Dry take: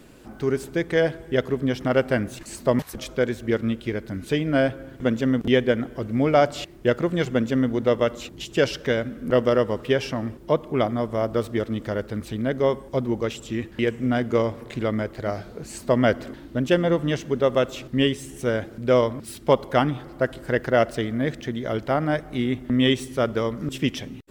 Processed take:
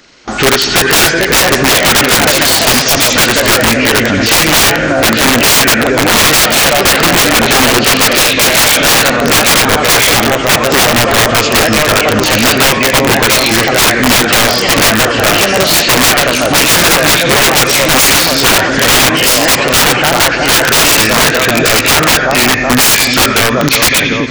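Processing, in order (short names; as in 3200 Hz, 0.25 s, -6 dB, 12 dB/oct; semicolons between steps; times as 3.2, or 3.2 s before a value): nonlinear frequency compression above 1300 Hz 1.5:1; gate with hold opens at -34 dBFS; tilt shelf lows -10 dB, about 770 Hz; in parallel at +2.5 dB: compressor 16:1, threshold -29 dBFS, peak gain reduction 16.5 dB; on the sum: echoes that change speed 0.529 s, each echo +2 st, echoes 2, each echo -6 dB; on a send: split-band echo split 1300 Hz, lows 0.374 s, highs 88 ms, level -10 dB; on the sum: wrapped overs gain 17 dB; maximiser +21.5 dB; gain -1 dB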